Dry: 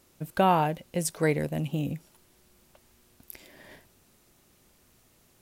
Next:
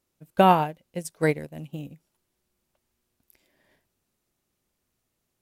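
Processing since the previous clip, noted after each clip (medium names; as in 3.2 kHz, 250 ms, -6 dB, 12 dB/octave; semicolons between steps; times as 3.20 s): upward expansion 2.5:1, over -34 dBFS; trim +6.5 dB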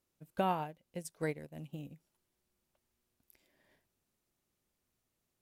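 compression 1.5:1, threshold -40 dBFS, peak gain reduction 10 dB; trim -5.5 dB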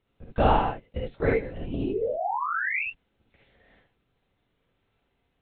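painted sound rise, 1.68–2.85 s, 240–2800 Hz -41 dBFS; LPC vocoder at 8 kHz whisper; gated-style reverb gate 90 ms rising, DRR -1.5 dB; trim +9 dB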